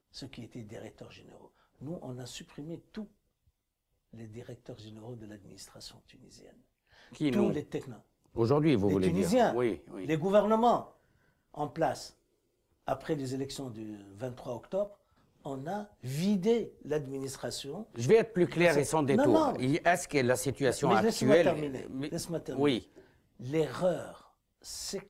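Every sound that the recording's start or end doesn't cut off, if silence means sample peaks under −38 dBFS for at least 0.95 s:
0:04.20–0:05.87

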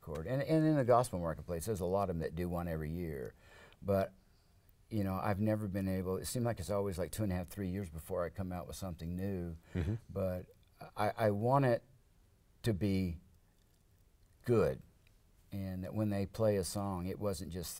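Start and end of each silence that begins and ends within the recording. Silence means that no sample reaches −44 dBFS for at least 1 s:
0:13.16–0:14.46

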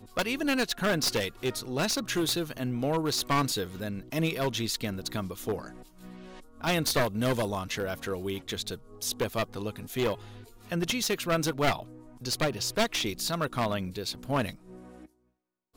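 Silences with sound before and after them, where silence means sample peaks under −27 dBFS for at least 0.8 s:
0:05.56–0:06.64

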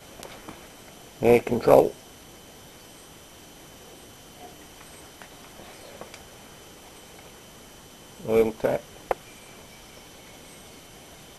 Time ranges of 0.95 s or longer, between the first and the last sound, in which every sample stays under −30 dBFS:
0:01.90–0:05.22
0:06.14–0:08.20

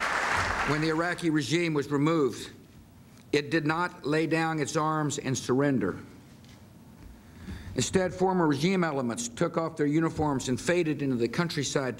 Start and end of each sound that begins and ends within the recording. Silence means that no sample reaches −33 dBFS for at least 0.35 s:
0:03.33–0:05.97

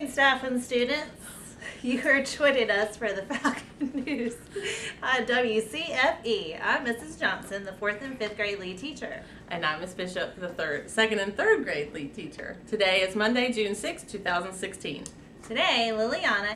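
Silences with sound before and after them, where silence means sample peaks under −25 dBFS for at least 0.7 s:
0:01.02–0:01.85

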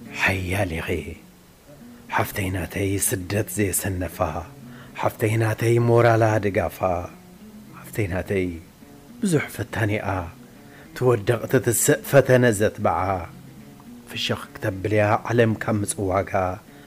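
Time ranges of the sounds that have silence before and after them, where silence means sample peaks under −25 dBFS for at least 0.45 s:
0:02.12–0:04.42
0:04.98–0:07.06
0:07.94–0:08.55
0:09.23–0:10.26
0:10.96–0:13.25

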